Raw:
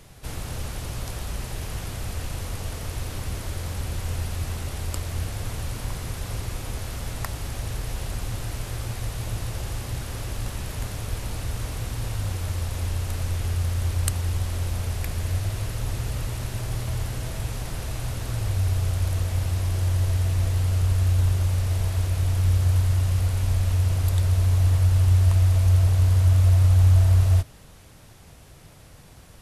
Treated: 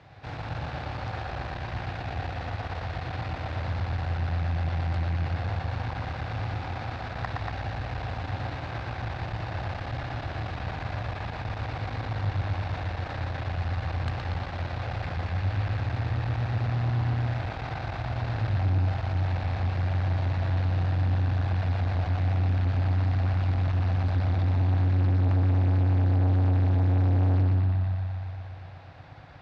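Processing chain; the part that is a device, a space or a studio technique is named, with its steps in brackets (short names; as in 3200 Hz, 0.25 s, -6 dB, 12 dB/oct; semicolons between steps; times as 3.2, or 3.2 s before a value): analogue delay pedal into a guitar amplifier (analogue delay 0.118 s, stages 4096, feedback 73%, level -3 dB; tube stage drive 21 dB, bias 0.5; speaker cabinet 90–3800 Hz, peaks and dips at 100 Hz +4 dB, 200 Hz -7 dB, 410 Hz -6 dB, 770 Hz +8 dB, 1600 Hz +4 dB, 3100 Hz -6 dB); gain +1 dB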